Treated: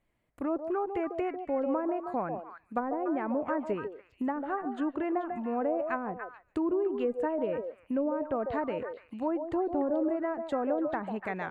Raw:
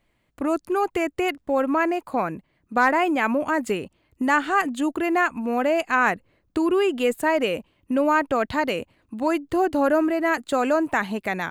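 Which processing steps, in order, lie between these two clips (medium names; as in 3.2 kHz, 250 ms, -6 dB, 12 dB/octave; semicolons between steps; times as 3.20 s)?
low-pass that closes with the level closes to 540 Hz, closed at -16 dBFS; peaking EQ 4.4 kHz -6 dB 1.8 oct; on a send: repeats whose band climbs or falls 145 ms, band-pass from 570 Hz, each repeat 1.4 oct, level -3 dB; on the sum: trim -7.5 dB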